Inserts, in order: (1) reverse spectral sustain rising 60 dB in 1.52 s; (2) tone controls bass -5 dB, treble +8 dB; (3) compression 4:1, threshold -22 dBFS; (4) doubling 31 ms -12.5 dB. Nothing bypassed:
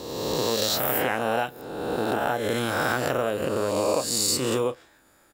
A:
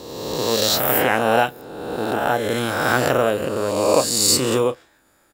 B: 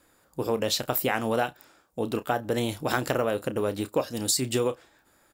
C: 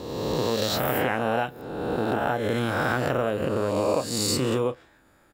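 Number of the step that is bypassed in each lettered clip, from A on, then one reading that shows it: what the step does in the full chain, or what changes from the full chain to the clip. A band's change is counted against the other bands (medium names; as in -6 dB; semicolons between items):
3, momentary loudness spread change +3 LU; 1, 125 Hz band +4.0 dB; 2, momentary loudness spread change -1 LU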